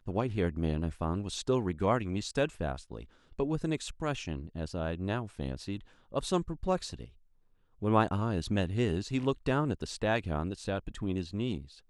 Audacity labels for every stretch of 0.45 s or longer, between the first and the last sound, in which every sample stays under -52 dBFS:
7.160000	7.810000	silence